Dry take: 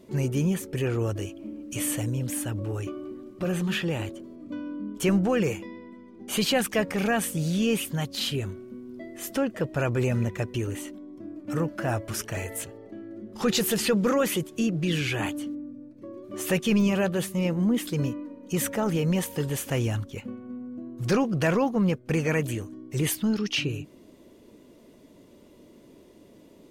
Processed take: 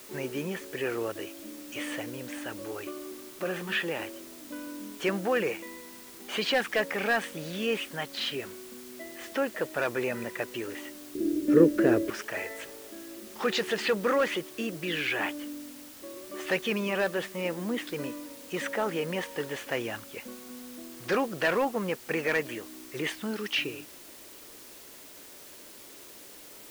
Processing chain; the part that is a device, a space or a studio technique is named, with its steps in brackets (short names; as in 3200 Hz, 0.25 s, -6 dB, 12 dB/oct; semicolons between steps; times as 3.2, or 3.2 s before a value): drive-through speaker (BPF 380–3600 Hz; bell 1800 Hz +5 dB 0.53 oct; hard clip -19 dBFS, distortion -19 dB; white noise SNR 16 dB); 11.15–12.1 resonant low shelf 560 Hz +11.5 dB, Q 3